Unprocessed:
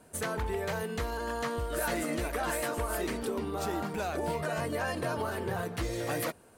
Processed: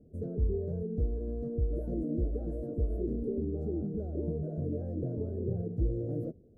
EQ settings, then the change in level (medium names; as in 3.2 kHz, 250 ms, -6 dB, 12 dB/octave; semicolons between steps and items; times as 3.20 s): inverse Chebyshev low-pass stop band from 930 Hz, stop band 40 dB; bass shelf 130 Hz +8.5 dB; 0.0 dB